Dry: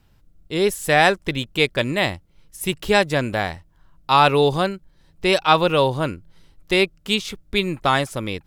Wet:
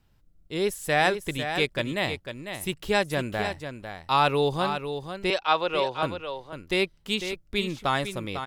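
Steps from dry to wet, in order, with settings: 5.3–6.03 three-band isolator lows -14 dB, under 350 Hz, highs -18 dB, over 6400 Hz; echo 0.499 s -8.5 dB; gain -7 dB

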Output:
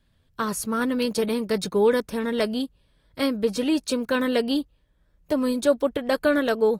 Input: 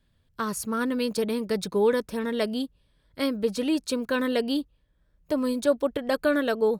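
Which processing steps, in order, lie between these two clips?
gain +2.5 dB; AAC 48 kbps 48000 Hz

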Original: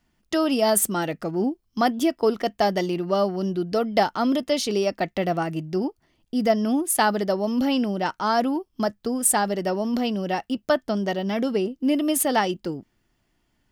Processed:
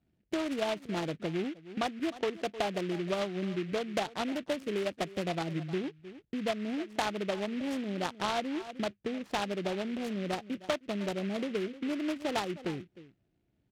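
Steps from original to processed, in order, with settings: Wiener smoothing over 41 samples; steep low-pass 3200 Hz 48 dB/oct; echo 0.308 s -20 dB; compressor 5:1, threshold -29 dBFS, peak gain reduction 13 dB; HPF 77 Hz; bell 240 Hz -5 dB 0.52 oct; noise-modulated delay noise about 2100 Hz, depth 0.092 ms

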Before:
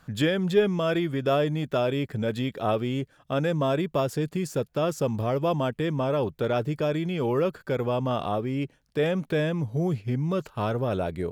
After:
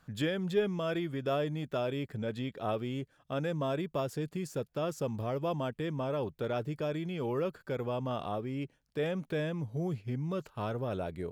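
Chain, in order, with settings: 2.16–2.62 high shelf 8700 Hz -7.5 dB; gain -8 dB

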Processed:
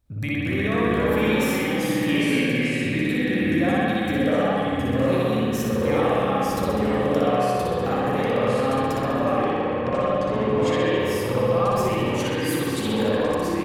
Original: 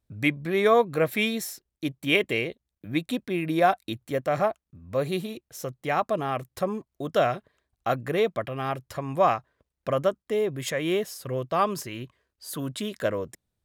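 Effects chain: low shelf 91 Hz +8.5 dB; compressor 6:1, threshold -33 dBFS, peak gain reduction 17 dB; echoes that change speed 0.217 s, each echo -2 st, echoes 3; 9.36–11 air absorption 74 m; on a send: reverse bouncing-ball echo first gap 60 ms, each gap 1.1×, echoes 5; on the sum: spring tank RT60 2.1 s, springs 56 ms, chirp 30 ms, DRR -6.5 dB; gain +3.5 dB

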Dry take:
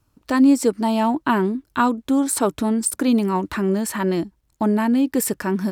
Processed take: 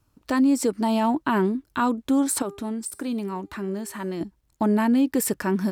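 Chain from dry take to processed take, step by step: limiter -12 dBFS, peak gain reduction 5.5 dB; 2.42–4.21 resonator 400 Hz, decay 0.68 s, mix 60%; gain -1.5 dB

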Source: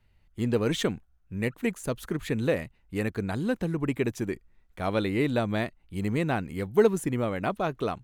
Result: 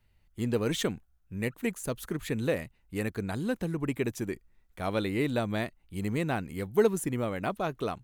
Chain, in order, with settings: high shelf 6900 Hz +7.5 dB; gain -3 dB

